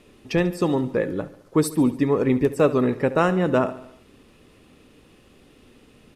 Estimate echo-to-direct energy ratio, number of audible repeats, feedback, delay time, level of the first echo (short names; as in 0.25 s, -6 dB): -14.5 dB, 4, 58%, 71 ms, -16.5 dB